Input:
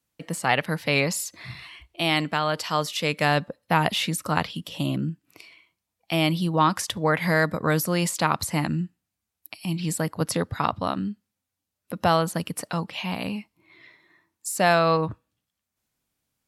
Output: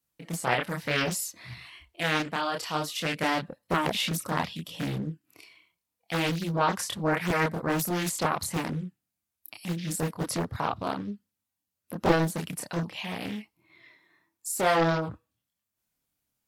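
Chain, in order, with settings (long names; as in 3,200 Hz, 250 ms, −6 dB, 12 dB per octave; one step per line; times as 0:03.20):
multi-voice chorus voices 2, 0.62 Hz, delay 27 ms, depth 3.2 ms
high-shelf EQ 12,000 Hz +9.5 dB
highs frequency-modulated by the lows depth 0.89 ms
level −1.5 dB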